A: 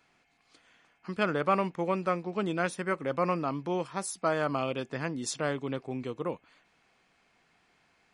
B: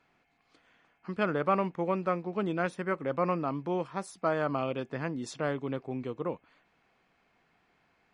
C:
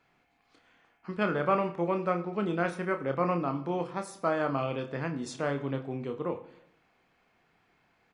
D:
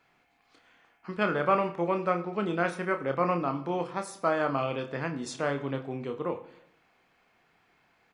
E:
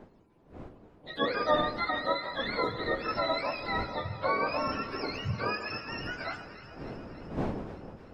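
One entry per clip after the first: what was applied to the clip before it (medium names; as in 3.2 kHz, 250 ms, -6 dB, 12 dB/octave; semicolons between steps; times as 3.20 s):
low-pass 2.1 kHz 6 dB/octave
doubling 29 ms -7 dB; on a send at -12 dB: reverberation RT60 0.80 s, pre-delay 28 ms
bass shelf 410 Hz -4.5 dB; trim +3 dB
spectrum inverted on a logarithmic axis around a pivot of 840 Hz; wind noise 430 Hz -43 dBFS; echo whose repeats swap between lows and highs 149 ms, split 1.3 kHz, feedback 83%, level -13 dB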